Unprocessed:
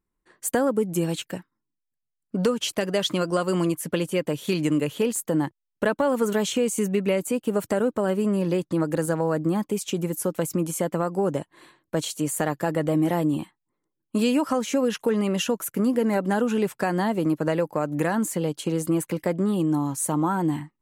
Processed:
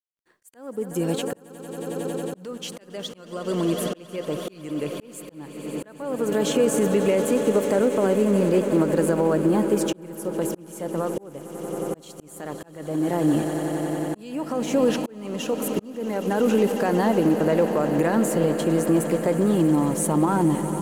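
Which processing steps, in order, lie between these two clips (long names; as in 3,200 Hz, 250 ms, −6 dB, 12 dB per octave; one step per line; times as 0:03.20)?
mu-law and A-law mismatch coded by A
echo that builds up and dies away 91 ms, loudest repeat 8, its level −17 dB
brickwall limiter −15.5 dBFS, peak gain reduction 6 dB
volume swells 728 ms
dynamic equaliser 430 Hz, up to +5 dB, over −38 dBFS, Q 0.73
level +1.5 dB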